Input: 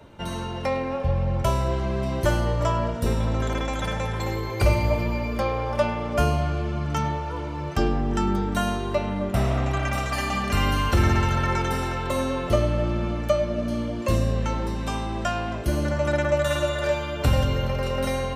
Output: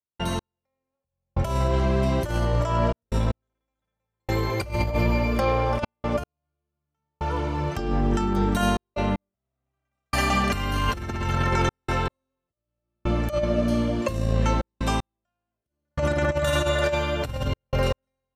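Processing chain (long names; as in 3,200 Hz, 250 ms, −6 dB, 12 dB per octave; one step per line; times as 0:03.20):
compressor whose output falls as the input rises −24 dBFS, ratio −0.5
gate pattern ".x.....xxxxxxxx" 77 BPM −60 dB
level +2.5 dB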